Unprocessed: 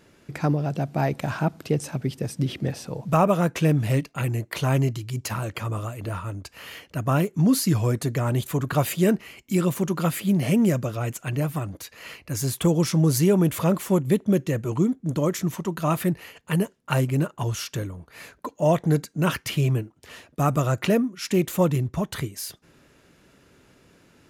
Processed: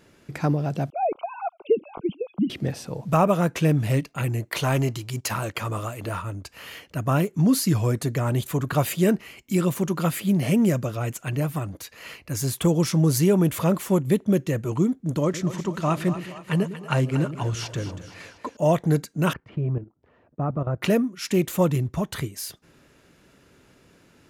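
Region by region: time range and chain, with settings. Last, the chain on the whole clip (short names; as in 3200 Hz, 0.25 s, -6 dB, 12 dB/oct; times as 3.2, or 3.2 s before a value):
0.9–2.5 sine-wave speech + Butterworth band-stop 1800 Hz, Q 1.4 + air absorption 170 m
4.49–6.22 low shelf 260 Hz -6.5 dB + sample leveller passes 1
15.23–18.57 block floating point 7-bit + LPF 6900 Hz + split-band echo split 470 Hz, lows 0.104 s, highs 0.235 s, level -11.5 dB
19.33–20.82 LPF 1000 Hz + level quantiser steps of 12 dB
whole clip: dry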